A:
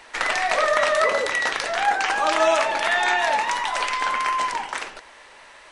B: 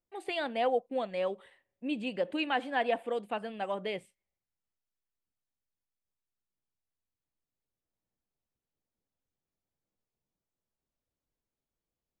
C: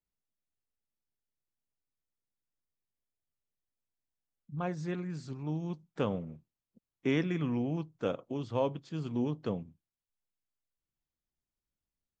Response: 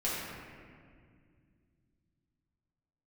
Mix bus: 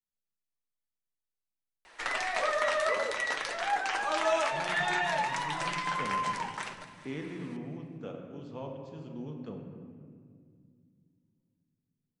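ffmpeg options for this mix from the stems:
-filter_complex "[0:a]flanger=delay=5.2:depth=6.6:regen=-40:speed=0.58:shape=triangular,adelay=1850,volume=-5.5dB,asplit=2[a][b];[b]volume=-16dB[c];[2:a]bandreject=f=60:t=h:w=6,bandreject=f=120:t=h:w=6,volume=-13.5dB,asplit=2[d][e];[e]volume=-5dB[f];[3:a]atrim=start_sample=2205[g];[f][g]afir=irnorm=-1:irlink=0[h];[c]aecho=0:1:206|412|618|824|1030|1236|1442:1|0.51|0.26|0.133|0.0677|0.0345|0.0176[i];[a][d][h][i]amix=inputs=4:normalize=0"

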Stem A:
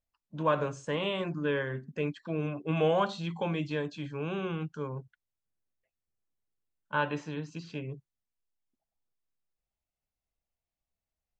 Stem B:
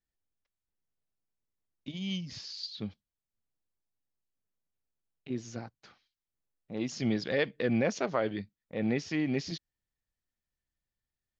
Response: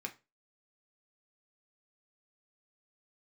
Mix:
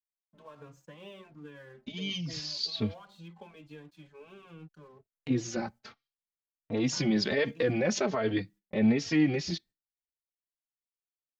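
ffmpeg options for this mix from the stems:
-filter_complex "[0:a]alimiter=limit=-20.5dB:level=0:latency=1:release=160,acompressor=threshold=-32dB:ratio=6,aeval=exprs='sgn(val(0))*max(abs(val(0))-0.00237,0)':c=same,volume=-9dB[a];[1:a]agate=range=-24dB:threshold=-56dB:ratio=16:detection=peak,dynaudnorm=f=440:g=11:m=13.5dB,alimiter=limit=-14dB:level=0:latency=1:release=53,volume=-1dB,asplit=2[b][c];[c]volume=-18.5dB[d];[2:a]atrim=start_sample=2205[e];[d][e]afir=irnorm=-1:irlink=0[f];[a][b][f]amix=inputs=3:normalize=0,asplit=2[g][h];[h]adelay=3.7,afreqshift=1.3[i];[g][i]amix=inputs=2:normalize=1"

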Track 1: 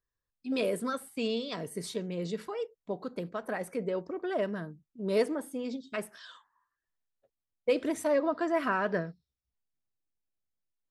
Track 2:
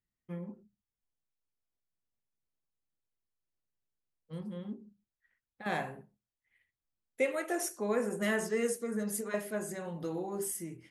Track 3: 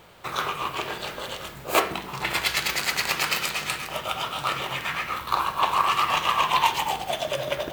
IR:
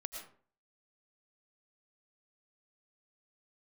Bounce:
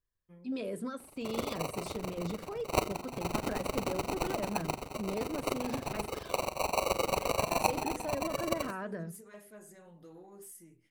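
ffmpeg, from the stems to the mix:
-filter_complex "[0:a]lowshelf=f=290:g=9.5,bandreject=f=60:t=h:w=6,bandreject=f=120:t=h:w=6,bandreject=f=180:t=h:w=6,bandreject=f=240:t=h:w=6,bandreject=f=300:t=h:w=6,bandreject=f=360:t=h:w=6,bandreject=f=420:t=h:w=6,volume=-5dB[a];[1:a]highshelf=f=9.8k:g=8,asoftclip=type=tanh:threshold=-28dB,volume=-14.5dB[b];[2:a]tremolo=f=23:d=0.889,acrusher=samples=26:mix=1:aa=0.000001,adelay=1000,volume=-4.5dB[c];[a][b]amix=inputs=2:normalize=0,alimiter=level_in=5.5dB:limit=-24dB:level=0:latency=1:release=197,volume=-5.5dB,volume=0dB[d];[c][d]amix=inputs=2:normalize=0"

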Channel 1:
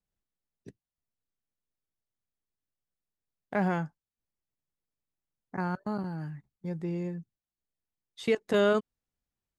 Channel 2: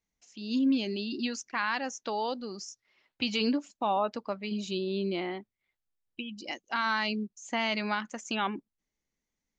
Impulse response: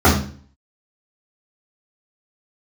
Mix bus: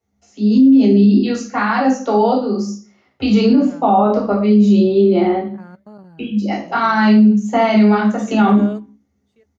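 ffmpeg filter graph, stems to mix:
-filter_complex "[0:a]aecho=1:1:5.1:0.39,volume=-10dB,afade=t=in:st=3.47:d=0.36:silence=0.316228,asplit=2[a][b];[b]volume=-22.5dB[c];[1:a]volume=-0.5dB,asplit=2[d][e];[e]volume=-13dB[f];[2:a]atrim=start_sample=2205[g];[f][g]afir=irnorm=-1:irlink=0[h];[c]aecho=0:1:1084:1[i];[a][d][h][i]amix=inputs=4:normalize=0,equalizer=f=570:w=2.2:g=6,alimiter=limit=-4.5dB:level=0:latency=1:release=31"

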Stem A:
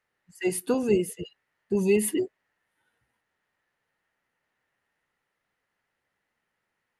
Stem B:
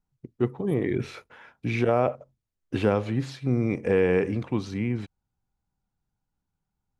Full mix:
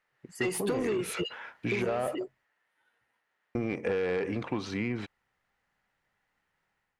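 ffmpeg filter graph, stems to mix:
-filter_complex "[0:a]acompressor=threshold=-25dB:ratio=6,volume=-6dB,afade=t=out:st=1.6:d=0.31:silence=0.281838[a];[1:a]volume=-12.5dB,asplit=3[b][c][d];[b]atrim=end=2.45,asetpts=PTS-STARTPTS,afade=t=out:st=2.446:d=0.004:c=hsin[e];[c]atrim=start=2.45:end=3.55,asetpts=PTS-STARTPTS,volume=0[f];[d]atrim=start=3.55,asetpts=PTS-STARTPTS,afade=t=in:d=0.004:c=hsin[g];[e][f][g]concat=n=3:v=0:a=1[h];[a][h]amix=inputs=2:normalize=0,dynaudnorm=f=120:g=5:m=10dB,asplit=2[i][j];[j]highpass=f=720:p=1,volume=15dB,asoftclip=type=tanh:threshold=-15dB[k];[i][k]amix=inputs=2:normalize=0,lowpass=f=3.1k:p=1,volume=-6dB,acompressor=threshold=-27dB:ratio=6"

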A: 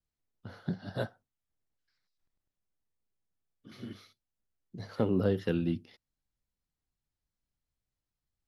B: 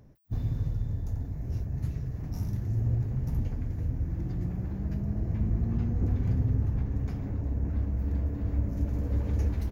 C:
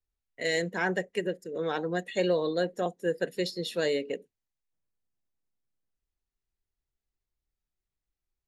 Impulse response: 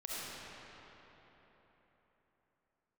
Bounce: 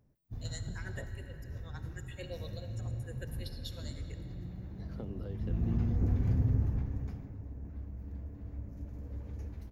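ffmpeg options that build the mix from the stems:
-filter_complex "[0:a]acrossover=split=870|1900[a][b][c];[a]acompressor=threshold=-34dB:ratio=4[d];[b]acompressor=threshold=-59dB:ratio=4[e];[c]acompressor=threshold=-60dB:ratio=4[f];[d][e][f]amix=inputs=3:normalize=0,volume=-12dB[g];[1:a]volume=-6dB,afade=t=in:st=5.38:d=0.31:silence=0.354813,afade=t=out:st=6.56:d=0.76:silence=0.251189,asplit=2[h][i];[i]volume=-18.5dB[j];[2:a]aemphasis=mode=production:type=riaa,tremolo=f=9:d=0.87,asplit=2[k][l];[l]afreqshift=0.91[m];[k][m]amix=inputs=2:normalize=1,volume=-18.5dB,asplit=2[n][o];[o]volume=-7.5dB[p];[3:a]atrim=start_sample=2205[q];[j][p]amix=inputs=2:normalize=0[r];[r][q]afir=irnorm=-1:irlink=0[s];[g][h][n][s]amix=inputs=4:normalize=0,dynaudnorm=f=110:g=3:m=3.5dB"

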